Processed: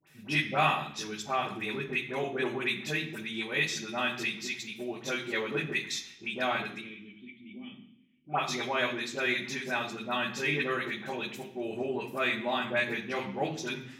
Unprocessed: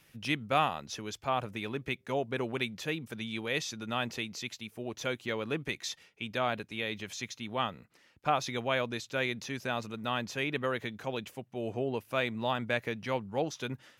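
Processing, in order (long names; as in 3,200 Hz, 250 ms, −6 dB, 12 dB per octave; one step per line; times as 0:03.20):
0:06.74–0:08.32: formant resonators in series i
all-pass dispersion highs, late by 72 ms, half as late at 1,300 Hz
convolution reverb RT60 0.65 s, pre-delay 3 ms, DRR −2.5 dB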